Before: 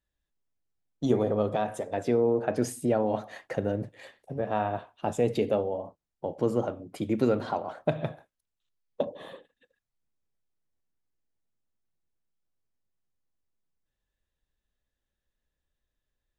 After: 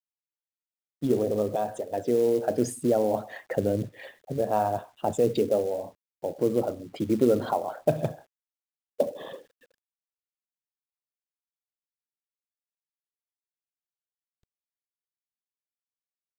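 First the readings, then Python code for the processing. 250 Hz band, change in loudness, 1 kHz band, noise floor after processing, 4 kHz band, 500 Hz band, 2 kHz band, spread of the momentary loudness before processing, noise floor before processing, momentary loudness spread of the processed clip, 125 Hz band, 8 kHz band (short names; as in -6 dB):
+1.5 dB, +2.0 dB, +2.0 dB, under -85 dBFS, +1.0 dB, +2.5 dB, -2.0 dB, 11 LU, under -85 dBFS, 11 LU, 0.0 dB, +3.0 dB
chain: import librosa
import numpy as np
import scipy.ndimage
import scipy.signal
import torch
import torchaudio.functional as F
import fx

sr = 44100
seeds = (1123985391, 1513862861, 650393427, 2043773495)

y = fx.envelope_sharpen(x, sr, power=1.5)
y = fx.peak_eq(y, sr, hz=3200.0, db=5.0, octaves=0.26)
y = fx.rider(y, sr, range_db=5, speed_s=2.0)
y = fx.env_lowpass(y, sr, base_hz=2700.0, full_db=-26.5)
y = fx.quant_companded(y, sr, bits=6)
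y = y * librosa.db_to_amplitude(2.5)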